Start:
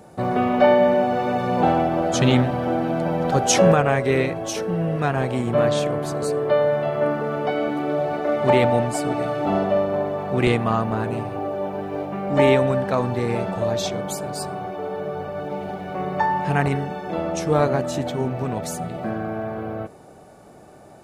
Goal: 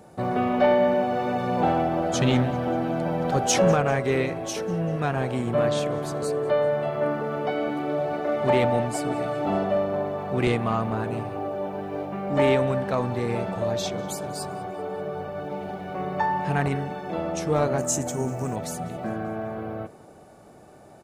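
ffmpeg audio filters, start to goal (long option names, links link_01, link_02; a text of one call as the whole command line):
ffmpeg -i in.wav -filter_complex "[0:a]asettb=1/sr,asplit=3[link_01][link_02][link_03];[link_01]atrim=end=17.784[link_04];[link_02]atrim=start=17.78:end=18.56,asetpts=PTS-STARTPTS,afade=type=in:duration=0.004:curve=qsin,afade=type=out:start_time=0.776:duration=0.004:curve=qsin,highshelf=frequency=5100:width_type=q:width=3:gain=10.5[link_05];[link_03]atrim=start=18.556[link_06];[link_04][link_05]acrossfade=duration=0.004:curve1=hsin:curve2=qsin[link_07];[link_07][link_06]acrossfade=duration=0.004:curve1=qsin:curve2=hsin,acontrast=33,aecho=1:1:195|390|585|780:0.0794|0.0405|0.0207|0.0105,volume=-8.5dB" out.wav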